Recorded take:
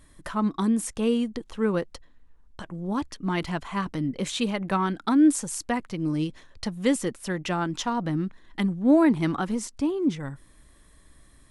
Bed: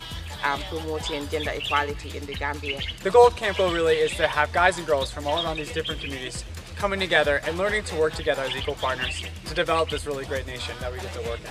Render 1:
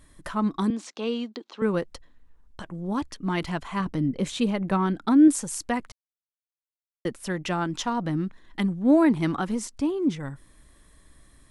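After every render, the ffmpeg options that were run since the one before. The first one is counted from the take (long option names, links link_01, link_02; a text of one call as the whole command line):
ffmpeg -i in.wav -filter_complex "[0:a]asettb=1/sr,asplit=3[link_01][link_02][link_03];[link_01]atrim=end=0.704[link_04];[link_02]atrim=start=0.7:end=1.62,asetpts=PTS-STARTPTS,afade=type=in:duration=0.004:curve=qsin,afade=type=out:start_time=0.916:duration=0.004:curve=qsin,highpass=frequency=270:width=0.5412,highpass=frequency=270:width=1.3066,equalizer=frequency=480:width_type=q:width=4:gain=-4,equalizer=frequency=1800:width_type=q:width=4:gain=-4,equalizer=frequency=4100:width_type=q:width=4:gain=5,lowpass=frequency=5900:width=0.5412,lowpass=frequency=5900:width=1.3066[link_05];[link_03]atrim=start=1.616[link_06];[link_04][link_05]acrossfade=duration=0.004:curve1=hsin:curve2=qsin[link_07];[link_07][link_06]acrossfade=duration=0.004:curve1=qsin:curve2=hsin,asettb=1/sr,asplit=3[link_08][link_09][link_10];[link_08]atrim=end=3.804[link_11];[link_09]atrim=start=3.8:end=5.28,asetpts=PTS-STARTPTS,afade=type=in:duration=0.004:curve=qsin,afade=type=out:start_time=1.476:duration=0.004:curve=qsin,tiltshelf=frequency=720:gain=3.5[link_12];[link_10]atrim=start=5.276[link_13];[link_11][link_12]acrossfade=duration=0.004:curve1=hsin:curve2=qsin[link_14];[link_14][link_13]acrossfade=duration=0.004:curve1=qsin:curve2=hsin,asplit=3[link_15][link_16][link_17];[link_15]atrim=end=5.92,asetpts=PTS-STARTPTS,afade=type=out:start_time=5.916:duration=0.004:curve=hsin[link_18];[link_16]atrim=start=5.92:end=7.05,asetpts=PTS-STARTPTS,volume=0[link_19];[link_17]atrim=start=7.05,asetpts=PTS-STARTPTS,afade=type=in:duration=0.004:curve=hsin[link_20];[link_18][link_19][link_20]concat=n=3:v=0:a=1" out.wav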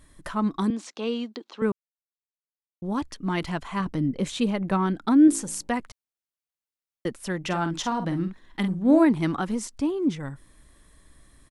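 ffmpeg -i in.wav -filter_complex "[0:a]asettb=1/sr,asplit=3[link_01][link_02][link_03];[link_01]atrim=end=5.274[link_04];[link_02]atrim=start=5.27:end=5.68,asetpts=PTS-STARTPTS,afade=type=in:duration=0.004:curve=qsin,afade=type=out:start_time=0.406:duration=0.004:curve=qsin,bandreject=frequency=55.35:width_type=h:width=4,bandreject=frequency=110.7:width_type=h:width=4,bandreject=frequency=166.05:width_type=h:width=4,bandreject=frequency=221.4:width_type=h:width=4,bandreject=frequency=276.75:width_type=h:width=4,bandreject=frequency=332.1:width_type=h:width=4,bandreject=frequency=387.45:width_type=h:width=4,bandreject=frequency=442.8:width_type=h:width=4,bandreject=frequency=498.15:width_type=h:width=4,bandreject=frequency=553.5:width_type=h:width=4,bandreject=frequency=608.85:width_type=h:width=4,bandreject=frequency=664.2:width_type=h:width=4,bandreject=frequency=719.55:width_type=h:width=4,bandreject=frequency=774.9:width_type=h:width=4,bandreject=frequency=830.25:width_type=h:width=4,bandreject=frequency=885.6:width_type=h:width=4,bandreject=frequency=940.95:width_type=h:width=4[link_05];[link_03]atrim=start=5.676[link_06];[link_04][link_05]acrossfade=duration=0.004:curve1=hsin:curve2=qsin[link_07];[link_07][link_06]acrossfade=duration=0.004:curve1=qsin:curve2=hsin,asplit=3[link_08][link_09][link_10];[link_08]afade=type=out:start_time=7.43:duration=0.02[link_11];[link_09]asplit=2[link_12][link_13];[link_13]adelay=48,volume=-8.5dB[link_14];[link_12][link_14]amix=inputs=2:normalize=0,afade=type=in:start_time=7.43:duration=0.02,afade=type=out:start_time=9.04:duration=0.02[link_15];[link_10]afade=type=in:start_time=9.04:duration=0.02[link_16];[link_11][link_15][link_16]amix=inputs=3:normalize=0,asplit=3[link_17][link_18][link_19];[link_17]atrim=end=1.72,asetpts=PTS-STARTPTS,afade=type=out:start_time=1.716:duration=0.004:curve=hsin[link_20];[link_18]atrim=start=1.72:end=2.82,asetpts=PTS-STARTPTS,volume=0[link_21];[link_19]atrim=start=2.82,asetpts=PTS-STARTPTS,afade=type=in:duration=0.004:curve=hsin[link_22];[link_20][link_21][link_22]concat=n=3:v=0:a=1" out.wav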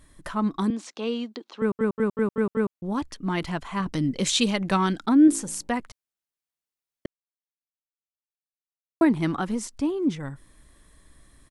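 ffmpeg -i in.wav -filter_complex "[0:a]asettb=1/sr,asplit=3[link_01][link_02][link_03];[link_01]atrim=end=3.934[link_04];[link_02]atrim=start=3.93:end=5.06,asetpts=PTS-STARTPTS,afade=type=in:duration=0.004:curve=qsin,afade=type=out:start_time=1.126:duration=0.004:curve=qsin,equalizer=frequency=5700:width=0.41:gain=13.5[link_05];[link_03]atrim=start=5.056[link_06];[link_04][link_05]acrossfade=duration=0.004:curve1=hsin:curve2=qsin[link_07];[link_07][link_06]acrossfade=duration=0.004:curve1=qsin:curve2=hsin,asplit=9[link_08][link_09][link_10][link_11][link_12][link_13][link_14][link_15][link_16];[link_08]atrim=end=1.792[link_17];[link_09]atrim=start=1.598:end=1.792[link_18];[link_10]atrim=start=1.598:end=1.792[link_19];[link_11]atrim=start=1.598:end=1.792[link_20];[link_12]atrim=start=1.598:end=1.792[link_21];[link_13]atrim=start=1.598:end=1.792[link_22];[link_14]atrim=start=2.738:end=7.06,asetpts=PTS-STARTPTS,afade=type=out:start_time=4.318:duration=0.004:curve=hsin[link_23];[link_15]atrim=start=7.06:end=9.01,asetpts=PTS-STARTPTS,volume=0[link_24];[link_16]atrim=start=9.01,asetpts=PTS-STARTPTS,afade=type=in:duration=0.004:curve=hsin[link_25];[link_17][link_18]acrossfade=duration=0.004:curve1=hsin:curve2=hsin[link_26];[link_26][link_19]acrossfade=duration=0.004:curve1=hsin:curve2=hsin[link_27];[link_27][link_20]acrossfade=duration=0.004:curve1=hsin:curve2=hsin[link_28];[link_28][link_21]acrossfade=duration=0.004:curve1=hsin:curve2=hsin[link_29];[link_29][link_22]acrossfade=duration=0.004:curve1=hsin:curve2=hsin[link_30];[link_23][link_24][link_25]concat=n=3:v=0:a=1[link_31];[link_30][link_31]acrossfade=duration=0.004:curve1=hsin:curve2=hsin" out.wav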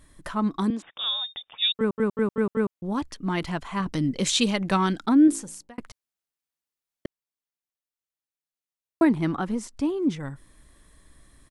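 ffmpeg -i in.wav -filter_complex "[0:a]asettb=1/sr,asplit=3[link_01][link_02][link_03];[link_01]atrim=end=0.824[link_04];[link_02]atrim=start=0.82:end=1.74,asetpts=PTS-STARTPTS,afade=type=in:duration=0.004:curve=qsin,afade=type=out:start_time=0.916:duration=0.004:curve=qsin,lowpass=frequency=3300:width_type=q:width=0.5098,lowpass=frequency=3300:width_type=q:width=0.6013,lowpass=frequency=3300:width_type=q:width=0.9,lowpass=frequency=3300:width_type=q:width=2.563,afreqshift=-3900[link_05];[link_03]atrim=start=1.736[link_06];[link_04][link_05]acrossfade=duration=0.004:curve1=hsin:curve2=qsin[link_07];[link_07][link_06]acrossfade=duration=0.004:curve1=qsin:curve2=hsin,asettb=1/sr,asplit=3[link_08][link_09][link_10];[link_08]atrim=end=9.154[link_11];[link_09]atrim=start=9.15:end=9.79,asetpts=PTS-STARTPTS,afade=type=in:duration=0.004:curve=qsin,afade=type=out:start_time=0.636:duration=0.004:curve=qsin,highshelf=frequency=2400:gain=-5.5[link_12];[link_10]atrim=start=9.786[link_13];[link_11][link_12]acrossfade=duration=0.004:curve1=hsin:curve2=qsin[link_14];[link_14][link_13]acrossfade=duration=0.004:curve1=qsin:curve2=hsin,asplit=2[link_15][link_16];[link_15]atrim=end=5.78,asetpts=PTS-STARTPTS,afade=type=out:start_time=5.17:duration=0.61[link_17];[link_16]atrim=start=5.78,asetpts=PTS-STARTPTS,afade=type=in:duration=0.004:curve=hsin[link_18];[link_17][link_18]concat=n=2:v=0:a=1" out.wav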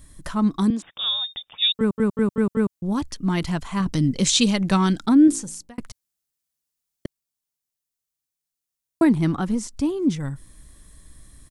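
ffmpeg -i in.wav -filter_complex "[0:a]acrossover=split=8500[link_01][link_02];[link_02]acompressor=threshold=-52dB:ratio=4:attack=1:release=60[link_03];[link_01][link_03]amix=inputs=2:normalize=0,bass=frequency=250:gain=8,treble=frequency=4000:gain=9" out.wav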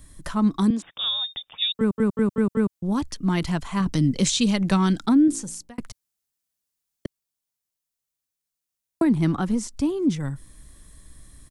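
ffmpeg -i in.wav -filter_complex "[0:a]acrossover=split=260[link_01][link_02];[link_02]acompressor=threshold=-21dB:ratio=6[link_03];[link_01][link_03]amix=inputs=2:normalize=0" out.wav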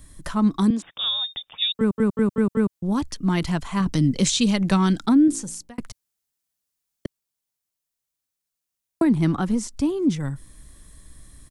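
ffmpeg -i in.wav -af "volume=1dB" out.wav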